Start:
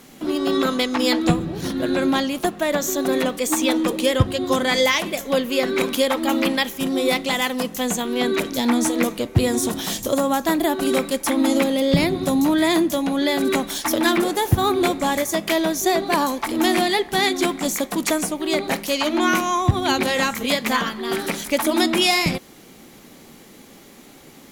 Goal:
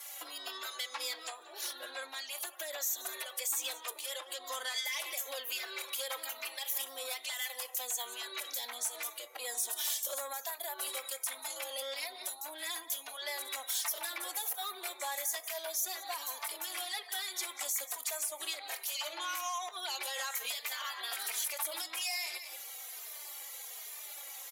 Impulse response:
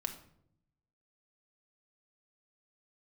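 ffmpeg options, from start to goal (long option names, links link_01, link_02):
-filter_complex "[0:a]asoftclip=type=tanh:threshold=-15dB,equalizer=frequency=13000:width_type=o:width=1.1:gain=7,aecho=1:1:184:0.133,acompressor=threshold=-31dB:ratio=10,highpass=frequency=610:width=0.5412,highpass=frequency=610:width=1.3066,afftdn=noise_reduction=14:noise_floor=-55,alimiter=level_in=3dB:limit=-24dB:level=0:latency=1:release=93,volume=-3dB,highshelf=frequency=2000:gain=9.5,asplit=2[link_01][link_02];[link_02]adelay=3,afreqshift=-1.2[link_03];[link_01][link_03]amix=inputs=2:normalize=1,volume=-2dB"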